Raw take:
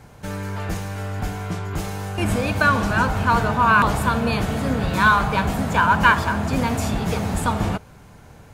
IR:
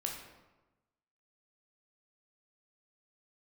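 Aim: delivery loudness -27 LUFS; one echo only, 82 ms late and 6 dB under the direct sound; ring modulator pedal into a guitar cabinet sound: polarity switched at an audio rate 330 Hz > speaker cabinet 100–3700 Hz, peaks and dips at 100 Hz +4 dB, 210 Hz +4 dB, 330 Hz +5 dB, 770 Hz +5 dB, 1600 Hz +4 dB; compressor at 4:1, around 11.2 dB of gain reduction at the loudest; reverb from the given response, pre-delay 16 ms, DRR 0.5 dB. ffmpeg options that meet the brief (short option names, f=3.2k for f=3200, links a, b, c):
-filter_complex "[0:a]acompressor=threshold=-24dB:ratio=4,aecho=1:1:82:0.501,asplit=2[a][b];[1:a]atrim=start_sample=2205,adelay=16[c];[b][c]afir=irnorm=-1:irlink=0,volume=-2dB[d];[a][d]amix=inputs=2:normalize=0,aeval=exprs='val(0)*sgn(sin(2*PI*330*n/s))':c=same,highpass=100,equalizer=f=100:t=q:w=4:g=4,equalizer=f=210:t=q:w=4:g=4,equalizer=f=330:t=q:w=4:g=5,equalizer=f=770:t=q:w=4:g=5,equalizer=f=1.6k:t=q:w=4:g=4,lowpass=f=3.7k:w=0.5412,lowpass=f=3.7k:w=1.3066,volume=-5.5dB"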